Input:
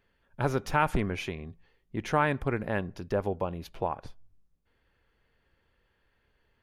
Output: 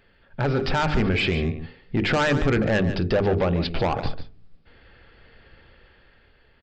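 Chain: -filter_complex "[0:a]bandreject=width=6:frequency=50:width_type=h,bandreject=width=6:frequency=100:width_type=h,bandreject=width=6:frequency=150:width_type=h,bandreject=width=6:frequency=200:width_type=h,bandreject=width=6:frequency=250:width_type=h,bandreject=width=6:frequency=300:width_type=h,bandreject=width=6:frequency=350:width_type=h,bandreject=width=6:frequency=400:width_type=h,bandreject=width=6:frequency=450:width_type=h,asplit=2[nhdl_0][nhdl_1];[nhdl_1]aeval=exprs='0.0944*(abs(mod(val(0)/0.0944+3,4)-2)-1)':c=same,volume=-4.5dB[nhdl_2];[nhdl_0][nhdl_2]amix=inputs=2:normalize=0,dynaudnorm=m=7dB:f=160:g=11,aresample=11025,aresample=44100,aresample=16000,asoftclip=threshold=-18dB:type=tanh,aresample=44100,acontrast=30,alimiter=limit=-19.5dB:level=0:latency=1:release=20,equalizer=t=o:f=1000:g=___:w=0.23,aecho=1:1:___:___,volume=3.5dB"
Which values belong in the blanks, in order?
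-7, 145, 0.266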